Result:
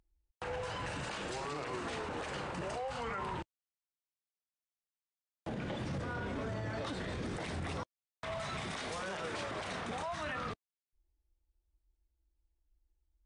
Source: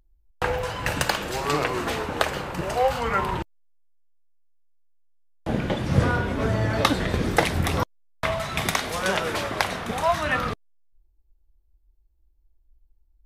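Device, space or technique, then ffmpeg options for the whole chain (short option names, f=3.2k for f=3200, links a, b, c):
podcast mastering chain: -af "highpass=f=70:p=1,deesser=0.6,acompressor=threshold=-25dB:ratio=4,alimiter=limit=-24dB:level=0:latency=1:release=14,volume=-6.5dB" -ar 22050 -c:a libmp3lame -b:a 128k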